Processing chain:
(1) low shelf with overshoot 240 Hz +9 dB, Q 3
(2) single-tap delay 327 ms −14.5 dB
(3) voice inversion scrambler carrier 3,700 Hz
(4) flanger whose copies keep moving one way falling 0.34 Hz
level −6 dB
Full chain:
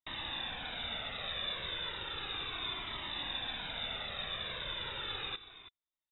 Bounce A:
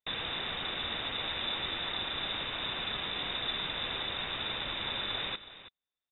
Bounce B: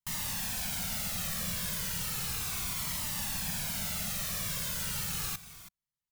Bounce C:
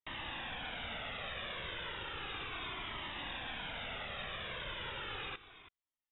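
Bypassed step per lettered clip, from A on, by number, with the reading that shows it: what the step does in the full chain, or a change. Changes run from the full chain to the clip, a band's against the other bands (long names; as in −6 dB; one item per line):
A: 4, 250 Hz band +2.0 dB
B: 3, 125 Hz band +11.5 dB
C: 1, 4 kHz band −6.5 dB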